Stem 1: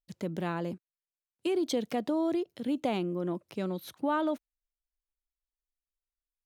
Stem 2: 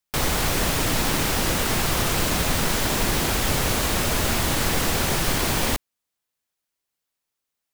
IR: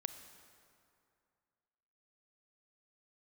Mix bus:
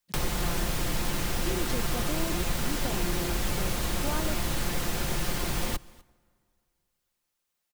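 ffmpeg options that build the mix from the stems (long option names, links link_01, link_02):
-filter_complex "[0:a]volume=-6.5dB[link_01];[1:a]aecho=1:1:5.7:0.43,acrossover=split=86|370[link_02][link_03][link_04];[link_02]acompressor=threshold=-28dB:ratio=4[link_05];[link_03]acompressor=threshold=-38dB:ratio=4[link_06];[link_04]acompressor=threshold=-35dB:ratio=4[link_07];[link_05][link_06][link_07]amix=inputs=3:normalize=0,volume=0dB,asplit=3[link_08][link_09][link_10];[link_09]volume=-15.5dB[link_11];[link_10]volume=-23dB[link_12];[2:a]atrim=start_sample=2205[link_13];[link_11][link_13]afir=irnorm=-1:irlink=0[link_14];[link_12]aecho=0:1:249:1[link_15];[link_01][link_08][link_14][link_15]amix=inputs=4:normalize=0"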